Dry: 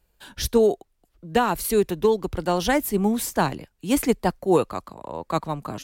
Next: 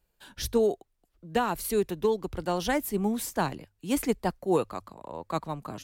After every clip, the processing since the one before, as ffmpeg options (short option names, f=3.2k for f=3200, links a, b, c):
-af "bandreject=f=50:t=h:w=6,bandreject=f=100:t=h:w=6,volume=-6dB"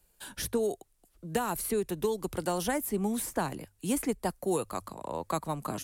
-filter_complex "[0:a]equalizer=f=10k:t=o:w=1.2:g=11.5,acrossover=split=120|2400|7000[a][b][c][d];[a]acompressor=threshold=-53dB:ratio=4[e];[b]acompressor=threshold=-32dB:ratio=4[f];[c]acompressor=threshold=-54dB:ratio=4[g];[d]acompressor=threshold=-43dB:ratio=4[h];[e][f][g][h]amix=inputs=4:normalize=0,volume=4dB"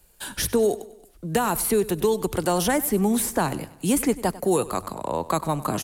-filter_complex "[0:a]asplit=2[a][b];[b]alimiter=level_in=0.5dB:limit=-24dB:level=0:latency=1,volume=-0.5dB,volume=0.5dB[c];[a][c]amix=inputs=2:normalize=0,aecho=1:1:97|194|291|388:0.126|0.0617|0.0302|0.0148,volume=3.5dB"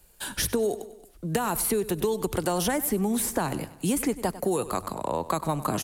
-af "acompressor=threshold=-22dB:ratio=6"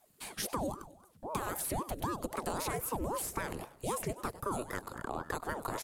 -af "aeval=exprs='val(0)*sin(2*PI*460*n/s+460*0.75/3.8*sin(2*PI*3.8*n/s))':c=same,volume=-7dB"